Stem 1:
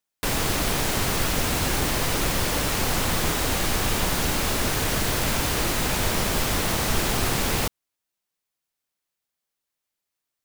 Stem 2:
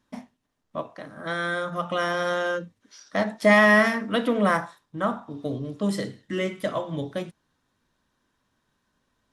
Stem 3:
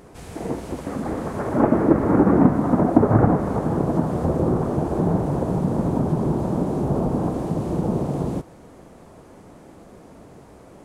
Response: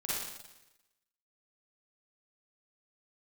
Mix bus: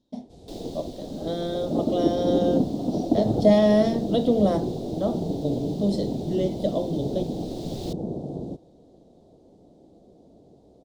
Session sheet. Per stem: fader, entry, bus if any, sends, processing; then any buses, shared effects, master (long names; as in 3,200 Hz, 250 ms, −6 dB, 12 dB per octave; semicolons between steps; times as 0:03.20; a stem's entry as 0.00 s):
−9.5 dB, 0.25 s, no send, automatic ducking −10 dB, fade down 0.95 s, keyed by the second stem
−1.0 dB, 0.00 s, no send, no processing
−11.0 dB, 0.15 s, no send, no processing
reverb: not used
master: drawn EQ curve 110 Hz 0 dB, 330 Hz +5 dB, 720 Hz +2 dB, 1,100 Hz −17 dB, 1,600 Hz −22 dB, 2,500 Hz −16 dB, 3,700 Hz +3 dB, 11,000 Hz −13 dB